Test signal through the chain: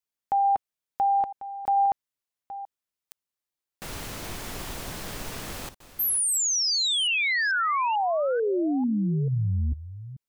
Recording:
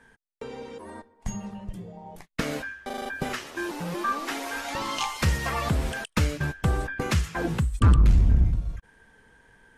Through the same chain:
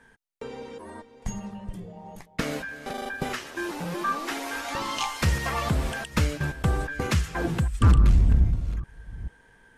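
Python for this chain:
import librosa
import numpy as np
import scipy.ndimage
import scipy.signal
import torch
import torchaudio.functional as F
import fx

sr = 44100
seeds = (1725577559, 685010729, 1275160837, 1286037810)

y = fx.reverse_delay(x, sr, ms=442, wet_db=-14)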